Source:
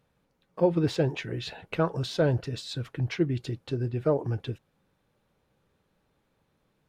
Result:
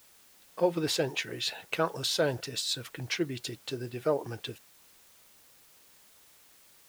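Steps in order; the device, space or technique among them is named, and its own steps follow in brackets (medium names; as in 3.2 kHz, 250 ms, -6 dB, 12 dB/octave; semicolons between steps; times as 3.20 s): turntable without a phono preamp (RIAA curve recording; white noise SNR 25 dB)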